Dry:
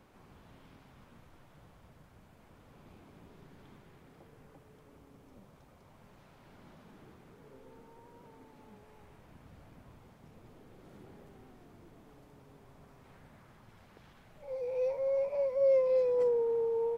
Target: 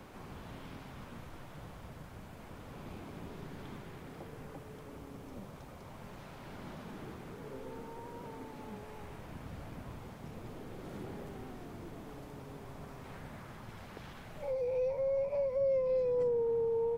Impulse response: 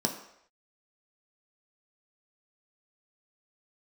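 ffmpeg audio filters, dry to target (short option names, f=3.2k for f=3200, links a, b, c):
-filter_complex "[0:a]acrossover=split=210[a][b];[b]acompressor=threshold=-46dB:ratio=3[c];[a][c]amix=inputs=2:normalize=0,volume=10dB"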